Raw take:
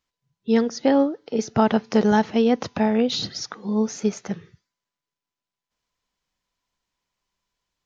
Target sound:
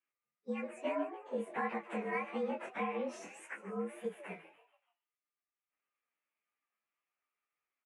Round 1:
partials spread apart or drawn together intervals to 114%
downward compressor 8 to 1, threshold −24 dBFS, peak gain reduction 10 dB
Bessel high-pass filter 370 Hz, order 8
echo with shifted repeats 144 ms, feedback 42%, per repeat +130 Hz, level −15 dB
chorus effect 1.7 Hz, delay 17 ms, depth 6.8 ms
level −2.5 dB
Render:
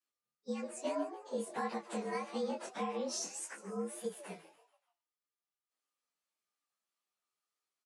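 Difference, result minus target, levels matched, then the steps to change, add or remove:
8,000 Hz band +15.5 dB
add after Bessel high-pass filter: high shelf with overshoot 3,300 Hz −12.5 dB, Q 3

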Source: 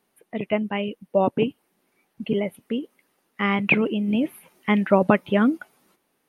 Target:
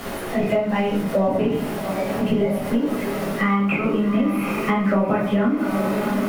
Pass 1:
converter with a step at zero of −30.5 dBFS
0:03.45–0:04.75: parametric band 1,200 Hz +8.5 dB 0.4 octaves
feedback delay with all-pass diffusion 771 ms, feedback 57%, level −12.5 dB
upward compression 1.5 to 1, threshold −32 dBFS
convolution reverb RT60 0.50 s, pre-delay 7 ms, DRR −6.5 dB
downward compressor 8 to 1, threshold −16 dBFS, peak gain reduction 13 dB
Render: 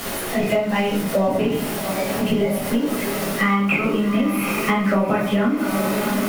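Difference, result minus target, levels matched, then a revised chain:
4,000 Hz band +5.5 dB
converter with a step at zero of −30.5 dBFS
0:03.45–0:04.75: parametric band 1,200 Hz +8.5 dB 0.4 octaves
feedback delay with all-pass diffusion 771 ms, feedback 57%, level −12.5 dB
upward compression 1.5 to 1, threshold −32 dBFS
convolution reverb RT60 0.50 s, pre-delay 7 ms, DRR −6.5 dB
downward compressor 8 to 1, threshold −16 dBFS, peak gain reduction 13 dB
high-shelf EQ 2,800 Hz −11 dB

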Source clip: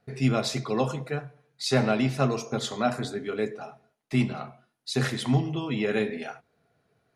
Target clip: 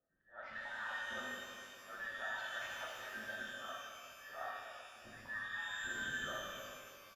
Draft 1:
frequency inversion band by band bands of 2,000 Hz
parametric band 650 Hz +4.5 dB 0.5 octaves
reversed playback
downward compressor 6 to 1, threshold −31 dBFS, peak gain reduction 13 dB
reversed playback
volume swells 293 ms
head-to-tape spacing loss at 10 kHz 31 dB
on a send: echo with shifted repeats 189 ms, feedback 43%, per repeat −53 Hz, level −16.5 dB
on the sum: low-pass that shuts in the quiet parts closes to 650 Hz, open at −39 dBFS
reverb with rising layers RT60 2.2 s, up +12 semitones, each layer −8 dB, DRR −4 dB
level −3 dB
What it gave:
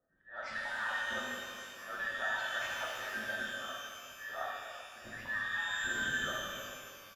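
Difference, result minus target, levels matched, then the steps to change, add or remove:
downward compressor: peak gain reduction −6.5 dB
change: downward compressor 6 to 1, threshold −39 dBFS, peak gain reduction 19.5 dB

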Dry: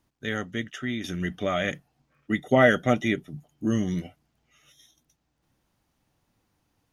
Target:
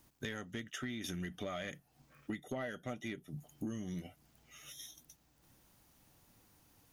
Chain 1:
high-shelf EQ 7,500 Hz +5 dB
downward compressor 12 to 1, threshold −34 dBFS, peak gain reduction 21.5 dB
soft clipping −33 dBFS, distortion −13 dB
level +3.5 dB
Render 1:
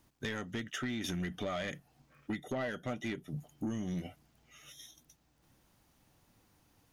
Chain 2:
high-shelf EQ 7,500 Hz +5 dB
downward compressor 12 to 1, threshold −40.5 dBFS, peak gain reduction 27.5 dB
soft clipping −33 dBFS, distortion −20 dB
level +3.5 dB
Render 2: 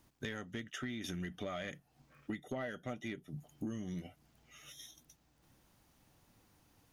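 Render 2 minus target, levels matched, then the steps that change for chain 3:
8,000 Hz band −3.0 dB
change: high-shelf EQ 7,500 Hz +12.5 dB

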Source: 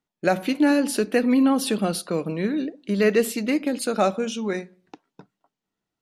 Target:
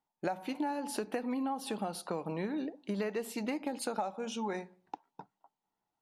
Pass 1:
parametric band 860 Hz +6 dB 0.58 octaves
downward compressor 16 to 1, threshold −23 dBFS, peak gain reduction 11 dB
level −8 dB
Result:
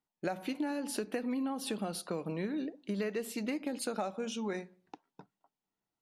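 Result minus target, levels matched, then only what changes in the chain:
1,000 Hz band −5.0 dB
change: parametric band 860 Hz +17 dB 0.58 octaves

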